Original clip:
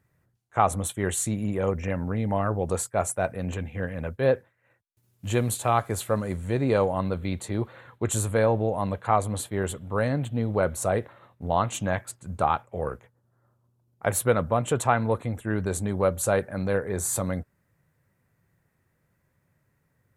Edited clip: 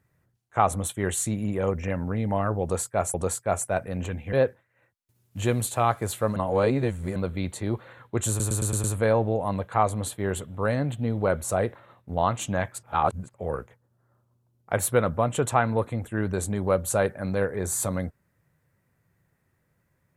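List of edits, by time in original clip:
0:02.62–0:03.14: repeat, 2 plays
0:03.81–0:04.21: remove
0:06.24–0:07.04: reverse
0:08.17: stutter 0.11 s, 6 plays
0:12.16–0:12.67: reverse

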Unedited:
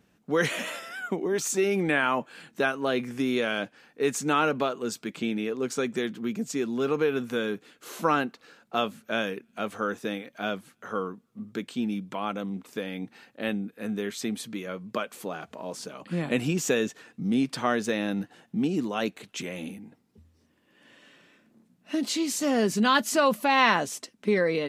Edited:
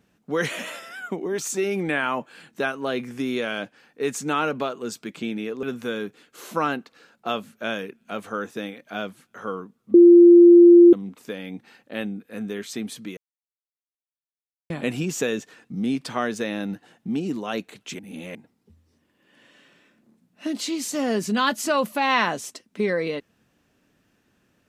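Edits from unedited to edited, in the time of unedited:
0:05.63–0:07.11: remove
0:11.42–0:12.41: beep over 346 Hz −6.5 dBFS
0:14.65–0:16.18: silence
0:19.47–0:19.83: reverse

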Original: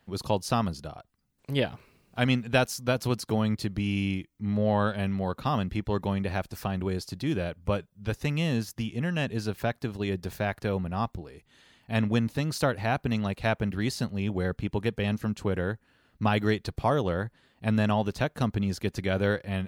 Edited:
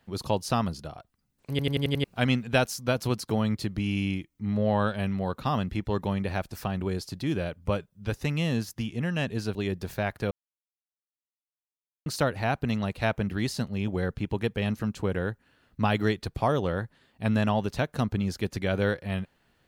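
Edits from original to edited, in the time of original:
0:01.50: stutter in place 0.09 s, 6 plays
0:09.55–0:09.97: remove
0:10.73–0:12.48: silence

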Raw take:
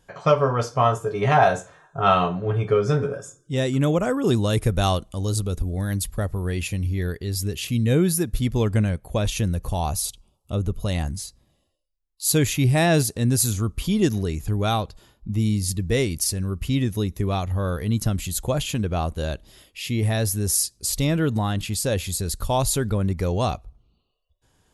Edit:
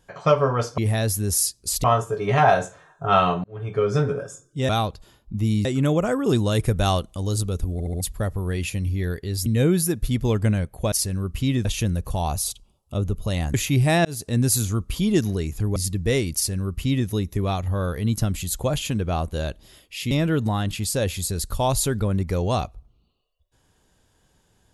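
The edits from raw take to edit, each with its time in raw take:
0:02.38–0:02.86: fade in
0:05.71: stutter in place 0.07 s, 4 plays
0:07.44–0:07.77: remove
0:11.12–0:12.42: remove
0:12.93–0:13.21: fade in
0:14.64–0:15.60: move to 0:03.63
0:16.19–0:16.92: duplicate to 0:09.23
0:19.95–0:21.01: move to 0:00.78

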